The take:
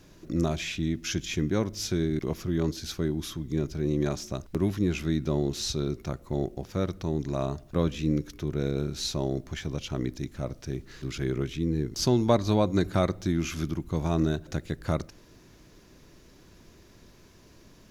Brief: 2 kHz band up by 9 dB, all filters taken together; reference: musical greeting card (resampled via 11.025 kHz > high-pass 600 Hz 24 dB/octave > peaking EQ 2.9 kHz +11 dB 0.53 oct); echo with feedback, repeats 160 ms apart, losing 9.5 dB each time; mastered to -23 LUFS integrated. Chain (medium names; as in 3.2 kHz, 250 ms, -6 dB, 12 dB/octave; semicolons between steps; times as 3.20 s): peaking EQ 2 kHz +6 dB; feedback delay 160 ms, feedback 33%, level -9.5 dB; resampled via 11.025 kHz; high-pass 600 Hz 24 dB/octave; peaking EQ 2.9 kHz +11 dB 0.53 oct; trim +9.5 dB